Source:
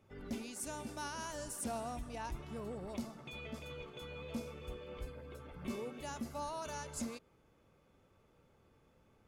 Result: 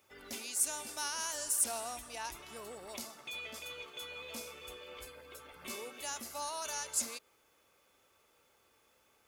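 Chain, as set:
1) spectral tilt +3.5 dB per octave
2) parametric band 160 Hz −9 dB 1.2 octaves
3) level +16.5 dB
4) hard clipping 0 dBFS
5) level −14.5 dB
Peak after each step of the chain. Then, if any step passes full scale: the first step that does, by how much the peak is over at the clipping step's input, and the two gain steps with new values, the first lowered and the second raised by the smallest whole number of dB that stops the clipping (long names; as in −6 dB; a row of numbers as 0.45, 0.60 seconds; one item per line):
−20.0, −20.0, −3.5, −3.5, −18.0 dBFS
no step passes full scale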